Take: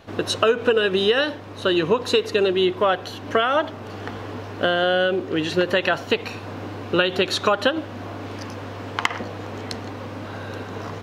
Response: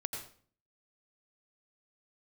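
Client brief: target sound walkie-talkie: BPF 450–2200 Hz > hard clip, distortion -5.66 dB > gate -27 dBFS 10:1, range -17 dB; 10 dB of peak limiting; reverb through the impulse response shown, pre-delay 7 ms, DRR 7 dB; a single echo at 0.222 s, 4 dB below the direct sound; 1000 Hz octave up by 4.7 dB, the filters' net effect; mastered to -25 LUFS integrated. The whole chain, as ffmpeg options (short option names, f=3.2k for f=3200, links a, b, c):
-filter_complex "[0:a]equalizer=f=1k:t=o:g=7,alimiter=limit=-10dB:level=0:latency=1,aecho=1:1:222:0.631,asplit=2[a][b];[1:a]atrim=start_sample=2205,adelay=7[c];[b][c]afir=irnorm=-1:irlink=0,volume=-8dB[d];[a][d]amix=inputs=2:normalize=0,highpass=450,lowpass=2.2k,asoftclip=type=hard:threshold=-24.5dB,agate=range=-17dB:threshold=-27dB:ratio=10,volume=3dB"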